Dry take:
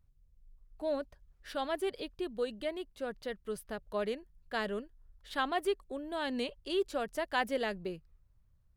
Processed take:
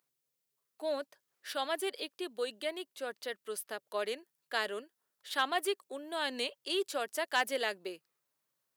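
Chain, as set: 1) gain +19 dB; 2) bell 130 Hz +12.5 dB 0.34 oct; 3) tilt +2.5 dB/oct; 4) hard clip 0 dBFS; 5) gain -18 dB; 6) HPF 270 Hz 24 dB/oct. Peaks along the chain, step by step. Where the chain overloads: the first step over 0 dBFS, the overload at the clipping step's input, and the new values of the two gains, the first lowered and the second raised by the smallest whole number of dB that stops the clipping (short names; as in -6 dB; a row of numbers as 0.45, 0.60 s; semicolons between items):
+1.5, +1.5, +4.5, 0.0, -18.0, -16.0 dBFS; step 1, 4.5 dB; step 1 +14 dB, step 5 -13 dB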